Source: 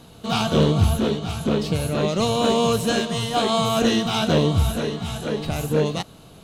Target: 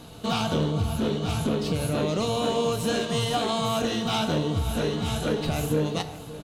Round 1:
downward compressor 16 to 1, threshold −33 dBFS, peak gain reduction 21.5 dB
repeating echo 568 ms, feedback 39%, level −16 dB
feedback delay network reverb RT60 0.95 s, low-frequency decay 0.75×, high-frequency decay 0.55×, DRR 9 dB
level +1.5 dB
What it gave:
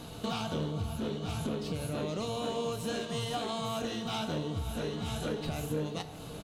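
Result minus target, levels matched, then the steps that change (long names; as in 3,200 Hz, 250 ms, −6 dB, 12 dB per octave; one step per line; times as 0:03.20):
downward compressor: peak gain reduction +9 dB
change: downward compressor 16 to 1, threshold −23.5 dBFS, peak gain reduction 12.5 dB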